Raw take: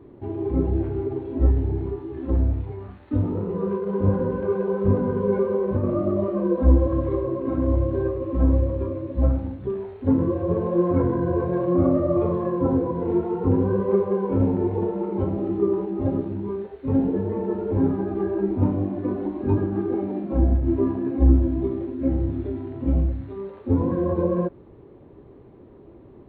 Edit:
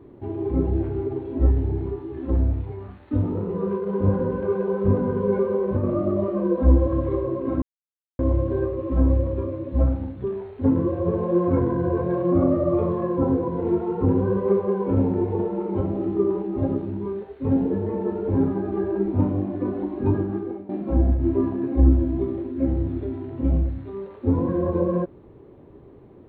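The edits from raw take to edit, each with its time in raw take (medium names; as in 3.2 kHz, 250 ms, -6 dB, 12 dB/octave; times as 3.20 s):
7.62 s: insert silence 0.57 s
19.65–20.12 s: fade out, to -16.5 dB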